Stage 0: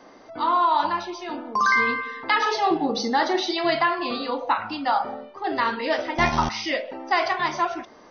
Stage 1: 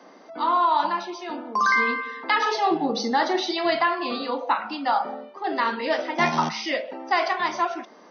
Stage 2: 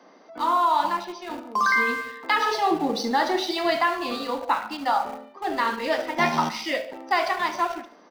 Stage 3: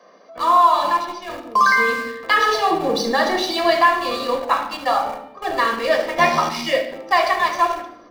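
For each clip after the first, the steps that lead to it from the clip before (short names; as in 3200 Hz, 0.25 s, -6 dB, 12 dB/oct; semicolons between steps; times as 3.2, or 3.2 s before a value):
Chebyshev high-pass 160 Hz, order 6
in parallel at -7.5 dB: sample gate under -28 dBFS; on the sum: feedback echo 72 ms, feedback 42%, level -15 dB; gain -3.5 dB
in parallel at -6.5 dB: crossover distortion -37 dBFS; on the sum: reverb RT60 0.80 s, pre-delay 4 ms, DRR 7.5 dB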